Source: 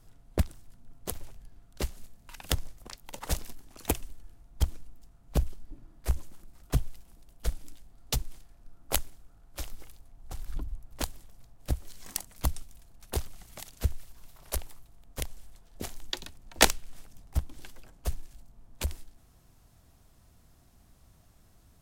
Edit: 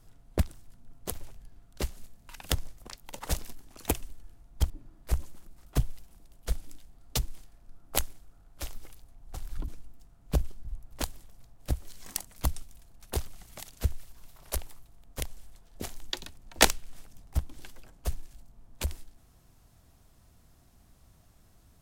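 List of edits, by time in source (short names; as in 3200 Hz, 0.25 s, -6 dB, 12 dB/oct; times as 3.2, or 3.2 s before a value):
4.7–5.67 move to 10.65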